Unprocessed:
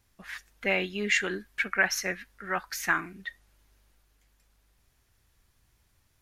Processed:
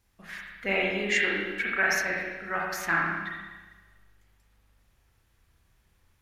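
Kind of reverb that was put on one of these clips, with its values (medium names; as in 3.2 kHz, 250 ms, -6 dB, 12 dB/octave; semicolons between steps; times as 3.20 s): spring tank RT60 1.3 s, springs 30/36/59 ms, chirp 55 ms, DRR -3.5 dB; trim -3 dB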